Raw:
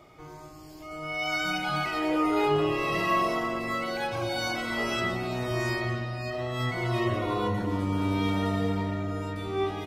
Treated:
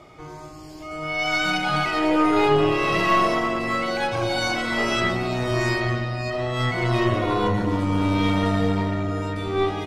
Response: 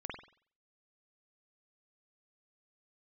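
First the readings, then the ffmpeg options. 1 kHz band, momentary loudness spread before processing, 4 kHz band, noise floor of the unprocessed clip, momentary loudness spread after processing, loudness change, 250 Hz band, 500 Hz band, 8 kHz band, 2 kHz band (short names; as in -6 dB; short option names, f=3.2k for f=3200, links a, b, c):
+6.5 dB, 8 LU, +6.5 dB, -46 dBFS, 8 LU, +6.0 dB, +6.0 dB, +6.0 dB, +6.0 dB, +6.5 dB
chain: -af "acontrast=58,lowpass=9.7k,aeval=exprs='0.398*(cos(1*acos(clip(val(0)/0.398,-1,1)))-cos(1*PI/2))+0.0355*(cos(4*acos(clip(val(0)/0.398,-1,1)))-cos(4*PI/2))':c=same"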